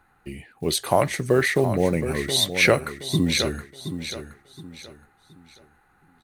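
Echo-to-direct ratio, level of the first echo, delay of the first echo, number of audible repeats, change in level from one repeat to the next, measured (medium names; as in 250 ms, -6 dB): -9.5 dB, -10.0 dB, 721 ms, 3, -10.0 dB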